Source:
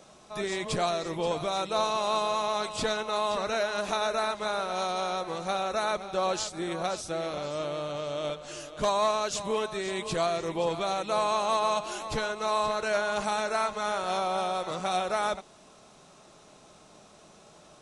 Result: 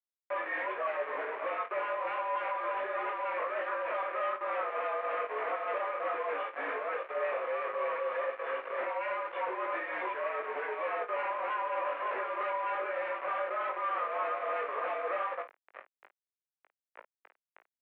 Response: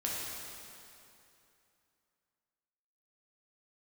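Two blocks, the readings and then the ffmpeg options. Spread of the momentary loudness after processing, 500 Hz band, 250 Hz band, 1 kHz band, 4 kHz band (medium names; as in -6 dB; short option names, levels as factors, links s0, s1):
3 LU, -5.0 dB, -15.5 dB, -4.0 dB, -19.0 dB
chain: -filter_complex "[0:a]aecho=1:1:1.7:0.67,adynamicequalizer=threshold=0.01:dfrequency=1400:dqfactor=0.8:tfrequency=1400:tqfactor=0.8:attack=5:release=100:ratio=0.375:range=3:mode=boostabove:tftype=bell,alimiter=limit=0.141:level=0:latency=1:release=51,acompressor=threshold=0.0282:ratio=10,tremolo=f=3.3:d=0.73,aresample=8000,asoftclip=type=hard:threshold=0.0168,aresample=44100,flanger=delay=16:depth=5.6:speed=1.3,aeval=exprs='0.0251*sin(PI/2*2.51*val(0)/0.0251)':c=same,acrusher=bits=5:mix=0:aa=0.000001,asplit=2[s0][s1];[s1]aecho=0:1:20|53:0.473|0.251[s2];[s0][s2]amix=inputs=2:normalize=0,highpass=f=530:t=q:w=0.5412,highpass=f=530:t=q:w=1.307,lowpass=f=2300:t=q:w=0.5176,lowpass=f=2300:t=q:w=0.7071,lowpass=f=2300:t=q:w=1.932,afreqshift=-67" -ar 48000 -c:a libopus -b:a 128k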